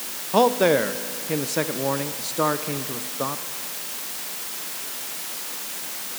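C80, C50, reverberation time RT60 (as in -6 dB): 13.0 dB, 12.0 dB, 2.2 s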